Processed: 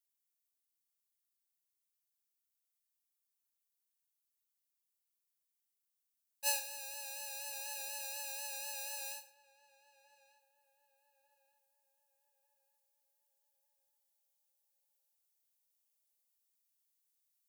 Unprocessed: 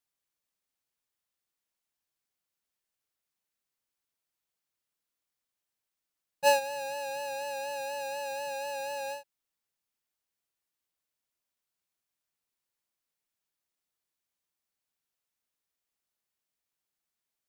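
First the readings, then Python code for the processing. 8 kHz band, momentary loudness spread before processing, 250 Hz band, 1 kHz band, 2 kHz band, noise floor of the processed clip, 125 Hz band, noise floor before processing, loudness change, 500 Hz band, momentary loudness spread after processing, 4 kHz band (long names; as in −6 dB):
+1.5 dB, 10 LU, below −25 dB, −17.0 dB, −9.5 dB, below −85 dBFS, can't be measured, below −85 dBFS, −7.0 dB, −22.0 dB, 8 LU, −4.0 dB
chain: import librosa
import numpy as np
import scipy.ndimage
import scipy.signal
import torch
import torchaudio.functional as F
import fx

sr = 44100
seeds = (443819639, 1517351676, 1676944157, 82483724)

p1 = scipy.signal.lfilter([1.0, -0.97], [1.0], x)
p2 = fx.rider(p1, sr, range_db=10, speed_s=2.0)
p3 = p1 + F.gain(torch.from_numpy(p2), 2.5).numpy()
p4 = fx.echo_filtered(p3, sr, ms=1195, feedback_pct=48, hz=1600.0, wet_db=-17.5)
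p5 = fx.rev_gated(p4, sr, seeds[0], gate_ms=170, shape='falling', drr_db=8.5)
y = F.gain(torch.from_numpy(p5), -6.5).numpy()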